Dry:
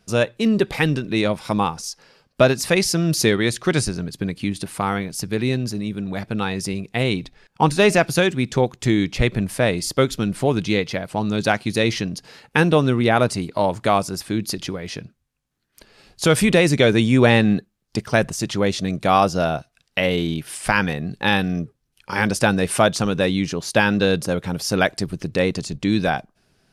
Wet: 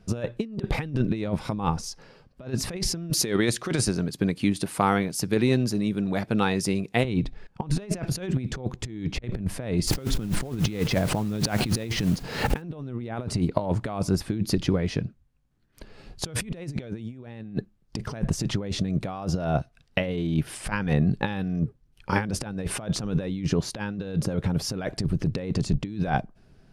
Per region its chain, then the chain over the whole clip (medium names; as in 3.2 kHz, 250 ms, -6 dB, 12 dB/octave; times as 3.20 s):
3.10–7.05 s: high-pass 340 Hz 6 dB/octave + treble shelf 6.2 kHz +8.5 dB
9.87–12.62 s: modulation noise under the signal 12 dB + swell ahead of each attack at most 78 dB/s
whole clip: tilt EQ -2.5 dB/octave; compressor with a negative ratio -20 dBFS, ratio -0.5; trim -5 dB